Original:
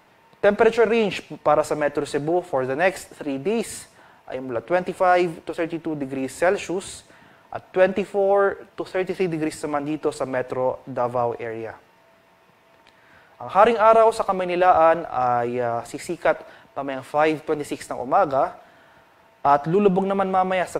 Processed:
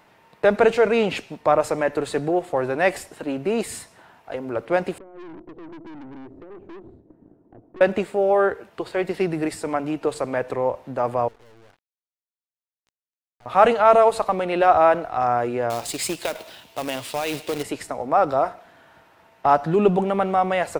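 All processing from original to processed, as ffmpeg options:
-filter_complex "[0:a]asettb=1/sr,asplit=3[s0][s1][s2];[s0]atrim=end=4.984[s3];[s1]atrim=start=4.98:end=7.81,asetpts=PTS-STARTPTS,afade=t=in:d=0.004:c=qsin,afade=t=out:st=2.826:d=0.004:c=qsin,acompressor=threshold=0.0282:ratio=20:attack=3.2:release=140:knee=1:detection=peak,lowpass=f=330:t=q:w=3.7,aeval=exprs='(tanh(79.4*val(0)+0.5)-tanh(0.5))/79.4':c=same[s4];[s2]atrim=start=7.806[s5];[s3][s4]acrossfade=d=0.004:c1=hsin:c2=qsin[s6];[s6][s5]acrossfade=d=0.004:c1=qsin:c2=hsin,asettb=1/sr,asplit=3[s7][s8][s9];[s7]atrim=end=11.284[s10];[s8]atrim=start=11.28:end=13.46,asetpts=PTS-STARTPTS,afade=t=in:d=0.004:c=qsin,afade=t=out:st=2.176:d=0.004:c=qsin,aecho=1:1:84:0.075,atrim=end_sample=96138,aeval=exprs='(tanh(100*val(0)+0.3)-tanh(0.3))/100':c=same,acrusher=bits=5:mix=0:aa=0.5[s11];[s9]atrim=start=13.456[s12];[s10][s11]acrossfade=d=0.004:c1=hsin:c2=qsin[s13];[s13][s12]acrossfade=d=0.004:c1=qsin:c2=hsin,asettb=1/sr,asplit=3[s14][s15][s16];[s14]atrim=end=15.704[s17];[s15]atrim=start=15.7:end=17.63,asetpts=PTS-STARTPTS,afade=t=in:d=0.004:c=qsin,afade=t=out:st=1.926:d=0.004:c=qsin,highshelf=f=2300:t=q:w=1.5:g=10,acompressor=threshold=0.1:ratio=16:attack=3.2:release=140:knee=1:detection=peak,acrusher=bits=2:mode=log:mix=0:aa=0.000001[s18];[s16]atrim=start=17.626[s19];[s17][s18]acrossfade=d=0.004:c1=hsin:c2=qsin[s20];[s20][s19]acrossfade=d=0.004:c1=qsin:c2=hsin"

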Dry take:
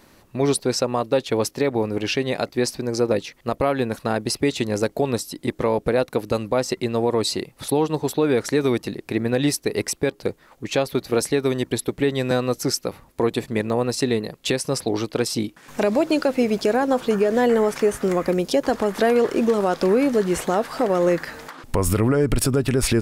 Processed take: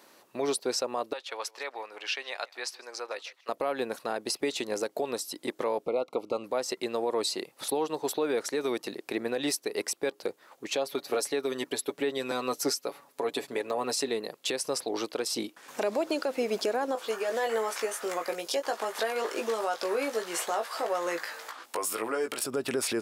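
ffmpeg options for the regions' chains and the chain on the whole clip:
-filter_complex "[0:a]asettb=1/sr,asplit=3[s0][s1][s2];[s0]atrim=end=1.134[s3];[s1]atrim=start=1.13:end=3.49,asetpts=PTS-STARTPTS,afade=t=in:d=0.004:c=qsin,afade=t=out:st=2.356:d=0.004:c=qsin,highpass=1100,aemphasis=mode=reproduction:type=50kf,aecho=1:1:156:0.0708,atrim=end_sample=104076[s4];[s2]atrim=start=3.486[s5];[s3][s4]acrossfade=d=0.004:c1=hsin:c2=qsin[s6];[s6][s5]acrossfade=d=0.004:c1=qsin:c2=hsin,asettb=1/sr,asplit=3[s7][s8][s9];[s7]atrim=end=5.864[s10];[s8]atrim=start=5.86:end=6.44,asetpts=PTS-STARTPTS,afade=t=in:d=0.004:c=qsin,afade=t=out:st=0.576:d=0.004:c=qsin,asuperstop=centerf=1700:order=20:qfactor=2.6,aemphasis=mode=reproduction:type=75fm[s11];[s9]atrim=start=6.436[s12];[s10][s11]acrossfade=d=0.004:c1=hsin:c2=qsin[s13];[s13][s12]acrossfade=d=0.004:c1=qsin:c2=hsin,asettb=1/sr,asplit=3[s14][s15][s16];[s14]atrim=end=10.754[s17];[s15]atrim=start=10.75:end=14.08,asetpts=PTS-STARTPTS,afade=t=in:d=0.004:c=qsin,afade=t=out:st=3.326:d=0.004:c=qsin,equalizer=f=85:w=1.7:g=-7.5,aecho=1:1:7.1:0.59,atrim=end_sample=146853[s18];[s16]atrim=start=14.076[s19];[s17][s18]acrossfade=d=0.004:c1=hsin:c2=qsin[s20];[s20][s19]acrossfade=d=0.004:c1=qsin:c2=hsin,asettb=1/sr,asplit=3[s21][s22][s23];[s21]atrim=end=16.954[s24];[s22]atrim=start=16.95:end=22.44,asetpts=PTS-STARTPTS,afade=t=in:d=0.004:c=qsin,afade=t=out:st=5.486:d=0.004:c=qsin,highpass=f=850:p=1,asplit=2[s25][s26];[s26]adelay=18,volume=0.562[s27];[s25][s27]amix=inputs=2:normalize=0,atrim=end_sample=242109[s28];[s23]atrim=start=22.436[s29];[s24][s28]acrossfade=d=0.004:c1=hsin:c2=qsin[s30];[s30][s29]acrossfade=d=0.004:c1=qsin:c2=hsin,highpass=410,equalizer=f=2000:t=o:w=0.77:g=-2.5,alimiter=limit=0.133:level=0:latency=1:release=182,volume=0.794"

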